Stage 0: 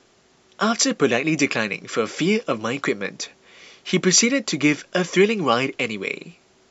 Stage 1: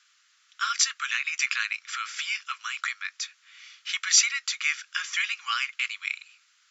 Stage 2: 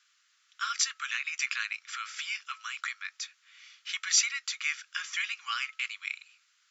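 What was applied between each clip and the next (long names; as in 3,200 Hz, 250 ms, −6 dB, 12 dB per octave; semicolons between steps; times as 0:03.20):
elliptic high-pass filter 1,300 Hz, stop band 60 dB; level −2 dB
hum removal 433.2 Hz, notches 3; level −5 dB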